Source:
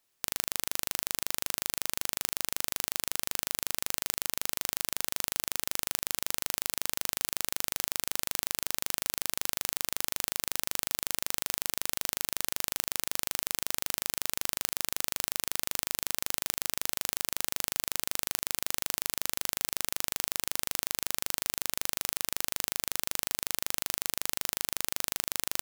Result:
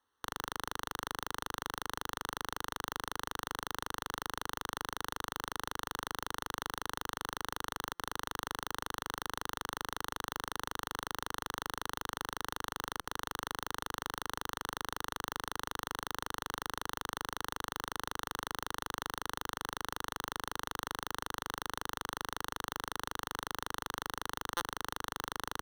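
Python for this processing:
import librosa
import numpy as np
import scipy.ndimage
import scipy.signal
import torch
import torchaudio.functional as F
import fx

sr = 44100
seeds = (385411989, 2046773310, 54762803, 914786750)

y = fx.highpass(x, sr, hz=52.0, slope=6)
y = fx.peak_eq(y, sr, hz=360.0, db=-11.5, octaves=0.33)
y = fx.fixed_phaser(y, sr, hz=640.0, stages=6)
y = np.repeat(scipy.signal.resample_poly(y, 1, 6), 6)[:len(y)]
y = fx.buffer_glitch(y, sr, at_s=(7.95, 13.01, 24.57), block=256, repeats=5)
y = y * 10.0 ** (7.0 / 20.0)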